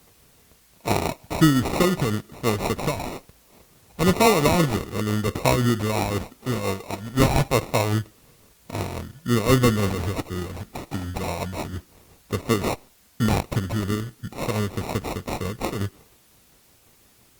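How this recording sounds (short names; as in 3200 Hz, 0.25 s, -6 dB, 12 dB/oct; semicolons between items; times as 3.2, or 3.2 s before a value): aliases and images of a low sample rate 1600 Hz, jitter 0%; tremolo triangle 5.7 Hz, depth 50%; a quantiser's noise floor 10-bit, dither triangular; Opus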